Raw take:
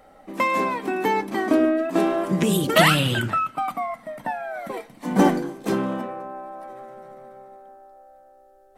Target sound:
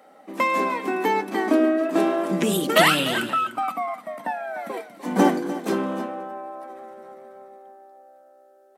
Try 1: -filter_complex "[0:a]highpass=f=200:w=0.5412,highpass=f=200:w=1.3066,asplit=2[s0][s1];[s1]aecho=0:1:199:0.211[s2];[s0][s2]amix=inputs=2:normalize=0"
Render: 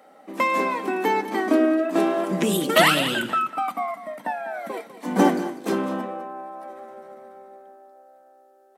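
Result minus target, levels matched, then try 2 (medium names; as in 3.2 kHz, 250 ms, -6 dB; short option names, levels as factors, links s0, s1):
echo 100 ms early
-filter_complex "[0:a]highpass=f=200:w=0.5412,highpass=f=200:w=1.3066,asplit=2[s0][s1];[s1]aecho=0:1:299:0.211[s2];[s0][s2]amix=inputs=2:normalize=0"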